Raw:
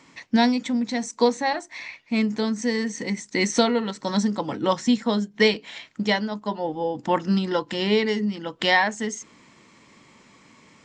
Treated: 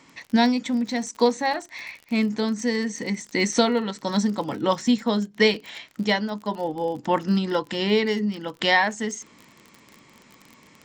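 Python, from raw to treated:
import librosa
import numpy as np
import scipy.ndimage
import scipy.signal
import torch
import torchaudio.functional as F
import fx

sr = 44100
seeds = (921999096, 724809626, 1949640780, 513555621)

y = fx.dmg_crackle(x, sr, seeds[0], per_s=37.0, level_db=-32.0)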